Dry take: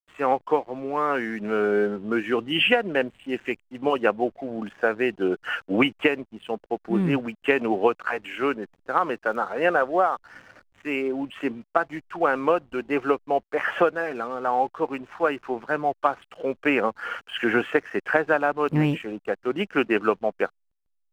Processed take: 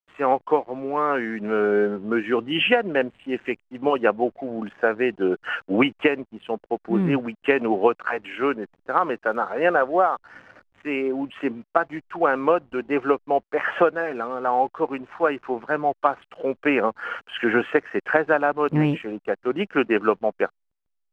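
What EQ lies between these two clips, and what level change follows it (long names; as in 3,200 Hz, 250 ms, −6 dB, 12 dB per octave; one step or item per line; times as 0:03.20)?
low-pass filter 2,500 Hz 6 dB per octave
low-shelf EQ 100 Hz −5.5 dB
+2.5 dB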